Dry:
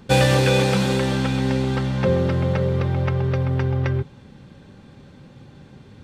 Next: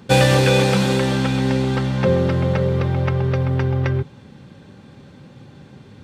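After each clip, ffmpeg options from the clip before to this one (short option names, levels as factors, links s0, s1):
-af "highpass=73,volume=1.33"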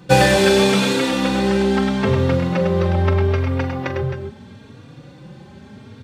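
-filter_complex "[0:a]asplit=2[s0][s1];[s1]aecho=0:1:43|102|264|279:0.282|0.531|0.335|0.141[s2];[s0][s2]amix=inputs=2:normalize=0,asplit=2[s3][s4];[s4]adelay=3.6,afreqshift=0.78[s5];[s3][s5]amix=inputs=2:normalize=1,volume=1.58"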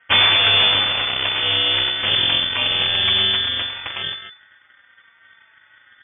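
-af "aeval=exprs='val(0)*sin(2*PI*1800*n/s)':c=same,aeval=exprs='0.841*(cos(1*acos(clip(val(0)/0.841,-1,1)))-cos(1*PI/2))+0.335*(cos(3*acos(clip(val(0)/0.841,-1,1)))-cos(3*PI/2))+0.335*(cos(6*acos(clip(val(0)/0.841,-1,1)))-cos(6*PI/2))+0.0188*(cos(7*acos(clip(val(0)/0.841,-1,1)))-cos(7*PI/2))':c=same,lowpass=f=3000:t=q:w=0.5098,lowpass=f=3000:t=q:w=0.6013,lowpass=f=3000:t=q:w=0.9,lowpass=f=3000:t=q:w=2.563,afreqshift=-3500"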